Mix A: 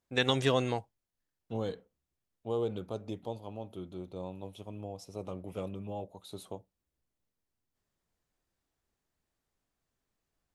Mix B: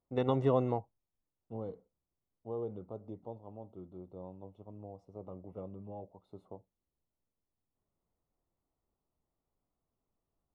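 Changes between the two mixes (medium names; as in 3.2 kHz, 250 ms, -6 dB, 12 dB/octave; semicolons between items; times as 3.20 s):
second voice -6.0 dB; master: add Savitzky-Golay filter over 65 samples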